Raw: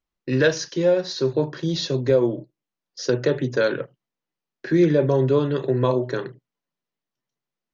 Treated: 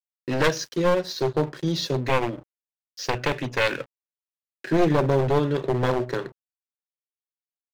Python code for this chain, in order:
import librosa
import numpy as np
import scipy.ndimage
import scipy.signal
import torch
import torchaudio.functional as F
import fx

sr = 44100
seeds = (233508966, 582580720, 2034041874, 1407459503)

y = np.minimum(x, 2.0 * 10.0 ** (-18.0 / 20.0) - x)
y = fx.graphic_eq_15(y, sr, hz=(160, 400, 2500), db=(-4, -6, 11), at=(2.06, 4.66))
y = np.sign(y) * np.maximum(np.abs(y) - 10.0 ** (-42.0 / 20.0), 0.0)